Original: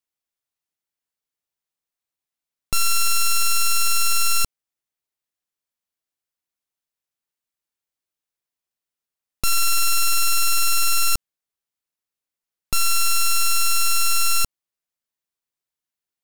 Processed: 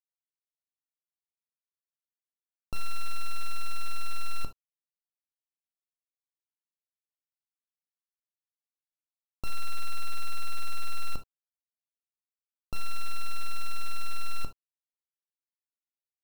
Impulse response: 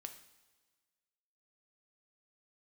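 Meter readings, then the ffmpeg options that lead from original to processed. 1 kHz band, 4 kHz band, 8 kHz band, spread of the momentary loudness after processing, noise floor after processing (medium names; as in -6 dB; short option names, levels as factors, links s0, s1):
-13.5 dB, -20.0 dB, -27.0 dB, 4 LU, under -85 dBFS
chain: -filter_complex "[0:a]lowpass=f=1100:w=0.5412,lowpass=f=1100:w=1.3066,acrusher=bits=6:dc=4:mix=0:aa=0.000001[s0];[1:a]atrim=start_sample=2205,atrim=end_sample=3528[s1];[s0][s1]afir=irnorm=-1:irlink=0,volume=0.668"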